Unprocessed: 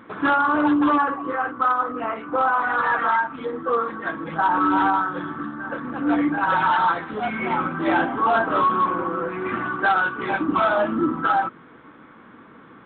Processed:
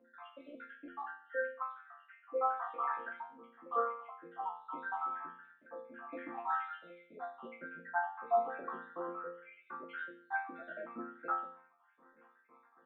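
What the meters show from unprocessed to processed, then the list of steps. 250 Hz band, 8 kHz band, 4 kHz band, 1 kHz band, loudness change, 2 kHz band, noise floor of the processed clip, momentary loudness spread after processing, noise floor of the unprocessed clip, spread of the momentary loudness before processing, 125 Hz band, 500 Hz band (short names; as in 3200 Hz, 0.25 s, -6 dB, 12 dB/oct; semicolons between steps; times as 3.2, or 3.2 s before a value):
-29.0 dB, n/a, under -25 dB, -18.0 dB, -18.0 dB, -19.5 dB, -69 dBFS, 17 LU, -47 dBFS, 9 LU, under -30 dB, -15.0 dB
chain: random spectral dropouts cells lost 73%; three-band isolator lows -18 dB, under 340 Hz, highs -13 dB, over 2300 Hz; tremolo triangle 0.83 Hz, depth 50%; air absorption 160 m; resonator bank F3 sus4, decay 0.53 s; gain +11 dB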